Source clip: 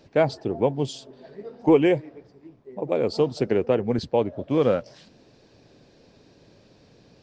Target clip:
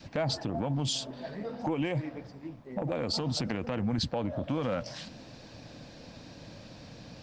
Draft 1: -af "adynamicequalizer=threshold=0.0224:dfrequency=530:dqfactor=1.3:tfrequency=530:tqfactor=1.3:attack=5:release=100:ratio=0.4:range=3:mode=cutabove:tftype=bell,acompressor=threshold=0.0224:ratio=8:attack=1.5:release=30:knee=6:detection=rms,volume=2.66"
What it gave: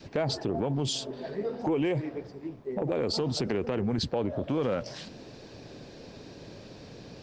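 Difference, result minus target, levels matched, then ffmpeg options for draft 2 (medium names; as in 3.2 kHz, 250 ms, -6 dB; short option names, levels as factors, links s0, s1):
500 Hz band +2.5 dB
-af "adynamicequalizer=threshold=0.0224:dfrequency=530:dqfactor=1.3:tfrequency=530:tqfactor=1.3:attack=5:release=100:ratio=0.4:range=3:mode=cutabove:tftype=bell,acompressor=threshold=0.0224:ratio=8:attack=1.5:release=30:knee=6:detection=rms,equalizer=f=400:w=4.3:g=-15,volume=2.66"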